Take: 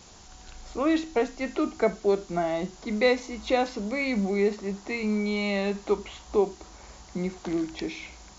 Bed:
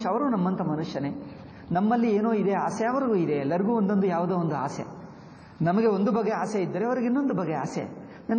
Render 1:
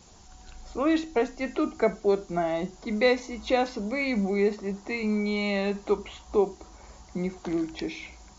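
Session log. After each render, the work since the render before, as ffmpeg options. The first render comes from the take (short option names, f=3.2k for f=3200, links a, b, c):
-af "afftdn=nr=6:nf=-50"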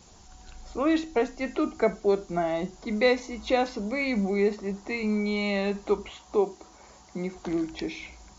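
-filter_complex "[0:a]asettb=1/sr,asplit=3[a][b][c];[a]atrim=end=6.094[d];[b]atrim=start=6.09:end=7.35,asetpts=PTS-STARTPTS,afade=t=in:d=0.004:c=qsin,afade=t=out:st=1.256:d=0.004:c=qsin,highpass=f=190:p=1[e];[c]atrim=start=7.346[f];[d][e]acrossfade=d=0.004:c1=hsin:c2=qsin[g];[g][f]acrossfade=d=0.004:c1=qsin:c2=hsin"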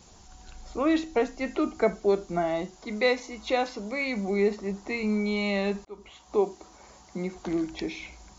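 -filter_complex "[0:a]asettb=1/sr,asplit=3[a][b][c];[a]atrim=end=2.624[d];[b]atrim=start=2.62:end=4.28,asetpts=PTS-STARTPTS,afade=t=in:d=0.004:c=qsin,afade=t=out:st=1.656:d=0.004:c=qsin,lowshelf=f=330:g=-7[e];[c]atrim=start=4.276[f];[d][e]acrossfade=d=0.004:c1=hsin:c2=qsin[g];[g][f]acrossfade=d=0.004:c1=qsin:c2=hsin,asplit=2[h][i];[h]atrim=end=5.85,asetpts=PTS-STARTPTS,afade=t=out:st=5.846:d=0.004:c=hsin[j];[i]atrim=start=5.85,asetpts=PTS-STARTPTS,afade=t=in:d=0.56[k];[j][k]concat=n=2:v=0:a=1"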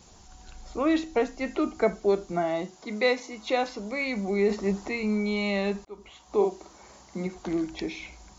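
-filter_complex "[0:a]asettb=1/sr,asplit=3[a][b][c];[a]atrim=end=2.324[d];[b]atrim=start=2.32:end=3.64,asetpts=PTS-STARTPTS,afade=t=in:d=0.004:c=qsin,afade=t=out:st=1.316:d=0.004:c=qsin,highpass=100[e];[c]atrim=start=3.636[f];[d][e]acrossfade=d=0.004:c1=hsin:c2=qsin[g];[g][f]acrossfade=d=0.004:c1=qsin:c2=hsin,asettb=1/sr,asplit=3[h][i][j];[h]atrim=end=4.494[k];[i]atrim=start=4.49:end=4.89,asetpts=PTS-STARTPTS,afade=t=in:d=0.004:c=qsin,afade=t=out:st=0.396:d=0.004:c=qsin,acontrast=33[l];[j]atrim=start=4.886[m];[k][l]acrossfade=d=0.004:c1=hsin:c2=qsin[n];[n][m]acrossfade=d=0.004:c1=qsin:c2=hsin,asettb=1/sr,asplit=3[o][p][q];[o]atrim=end=6.354[r];[p]atrim=start=6.35:end=7.27,asetpts=PTS-STARTPTS,afade=t=in:d=0.004:c=qsin,afade=t=out:st=0.916:d=0.004:c=qsin,asplit=2[s][t];[t]adelay=49,volume=-5dB[u];[s][u]amix=inputs=2:normalize=0,atrim=end_sample=40572[v];[q]atrim=start=7.266[w];[r][v]acrossfade=d=0.004:c1=hsin:c2=qsin[x];[x][w]acrossfade=d=0.004:c1=qsin:c2=hsin"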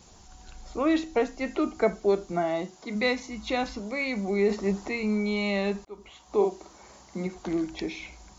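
-filter_complex "[0:a]asplit=3[a][b][c];[a]afade=t=out:st=2.94:d=0.02[d];[b]asubboost=boost=9.5:cutoff=150,afade=t=in:st=2.94:d=0.02,afade=t=out:st=3.78:d=0.02[e];[c]afade=t=in:st=3.78:d=0.02[f];[d][e][f]amix=inputs=3:normalize=0"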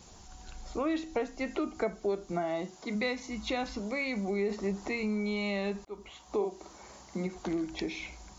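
-af "acompressor=threshold=-31dB:ratio=2.5"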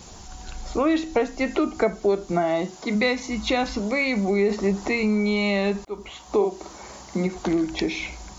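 -af "volume=10dB"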